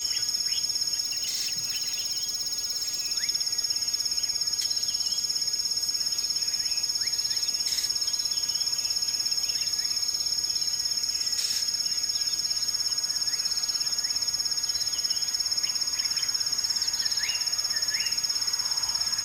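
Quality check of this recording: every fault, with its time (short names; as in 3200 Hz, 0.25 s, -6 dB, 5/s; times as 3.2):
tone 6600 Hz -32 dBFS
1.02–3.13 clipped -25.5 dBFS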